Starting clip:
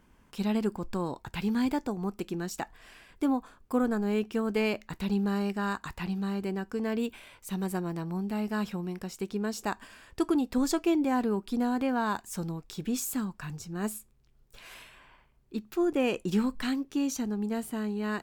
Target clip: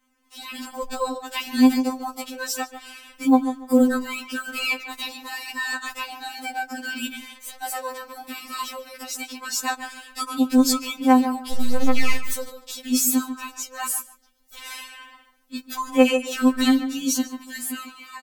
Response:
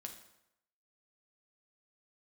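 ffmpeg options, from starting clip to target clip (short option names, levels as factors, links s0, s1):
-filter_complex "[0:a]asplit=3[s0][s1][s2];[s0]afade=t=out:st=7.15:d=0.02[s3];[s1]aeval=exprs='(tanh(251*val(0)+0.35)-tanh(0.35))/251':c=same,afade=t=in:st=7.15:d=0.02,afade=t=out:st=7.62:d=0.02[s4];[s2]afade=t=in:st=7.62:d=0.02[s5];[s3][s4][s5]amix=inputs=3:normalize=0,asettb=1/sr,asplit=3[s6][s7][s8];[s6]atrim=end=13.934[s9];[s7]atrim=start=13.93:end=14.72,asetpts=PTS-STARTPTS,afade=t=in:d=0.004:c=qsin,afade=t=out:st=0.786:d=0.004:c=qsin,bandreject=f=2500:w=9.9[s10];[s8]atrim=start=14.716[s11];[s9][s10]acrossfade=d=0.004:c1=hsin:c2=qsin[s12];[s12][s11]acrossfade=d=0.004:c1=qsin:c2=hsin,lowshelf=f=180:g=-10.5,asettb=1/sr,asplit=3[s13][s14][s15];[s13]atrim=end=11.524[s16];[s14]atrim=start=11.52:end=12.33,asetpts=PTS-STARTPTS,afade=t=in:d=0.004:c=qsin,afade=t=out:st=0.806:d=0.004:c=qsin,aeval=exprs='abs(val(0))':c=same[s17];[s15]atrim=start=12.326[s18];[s16][s17]acrossfade=d=0.004:c1=hsin:c2=qsin[s19];[s19][s18]acrossfade=d=0.004:c1=qsin:c2=hsin,highshelf=f=2600:g=8,dynaudnorm=f=210:g=5:m=5.31,asplit=2[s20][s21];[s21]adelay=144,lowpass=f=2000:p=1,volume=0.316,asplit=2[s22][s23];[s23]adelay=144,lowpass=f=2000:p=1,volume=0.21,asplit=2[s24][s25];[s25]adelay=144,lowpass=f=2000:p=1,volume=0.21[s26];[s20][s22][s24][s26]amix=inputs=4:normalize=0,afftfilt=real='re*3.46*eq(mod(b,12),0)':imag='im*3.46*eq(mod(b,12),0)':win_size=2048:overlap=0.75,volume=0.631"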